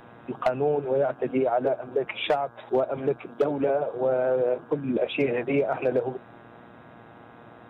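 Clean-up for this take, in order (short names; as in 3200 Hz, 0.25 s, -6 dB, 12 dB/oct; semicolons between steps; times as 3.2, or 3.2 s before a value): clip repair -14.5 dBFS; de-hum 117.7 Hz, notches 14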